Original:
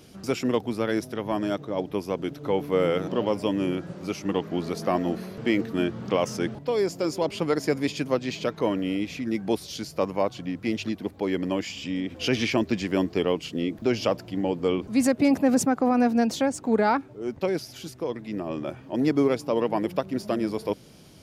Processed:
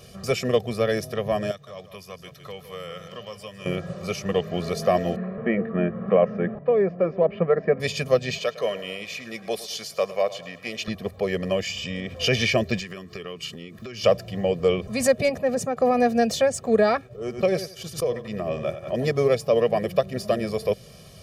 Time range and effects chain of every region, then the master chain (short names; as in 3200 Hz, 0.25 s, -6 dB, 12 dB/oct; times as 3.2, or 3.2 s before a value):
1.51–3.66 passive tone stack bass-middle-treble 5-5-5 + echo 0.155 s -11 dB + three-band squash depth 70%
5.16–7.8 LPF 1900 Hz 24 dB/oct + resonant low shelf 150 Hz -6 dB, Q 3
8.38–10.88 HPF 710 Hz 6 dB/oct + feedback echo 0.107 s, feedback 45%, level -16.5 dB
12.79–14.04 HPF 160 Hz 6 dB/oct + band shelf 680 Hz -10.5 dB 1.2 oct + compressor 10:1, threshold -33 dBFS
15.29–15.77 high shelf 5100 Hz -8 dB + resonator 470 Hz, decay 0.17 s, mix 40%
17.07–19.08 expander -36 dBFS + feedback echo 90 ms, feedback 22%, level -11 dB + backwards sustainer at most 150 dB/s
whole clip: comb 1.7 ms, depth 97%; dynamic EQ 1100 Hz, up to -7 dB, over -42 dBFS, Q 2.5; gain +2 dB